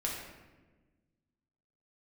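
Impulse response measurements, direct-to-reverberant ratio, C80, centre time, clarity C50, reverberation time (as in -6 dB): -3.5 dB, 4.0 dB, 60 ms, 2.0 dB, 1.3 s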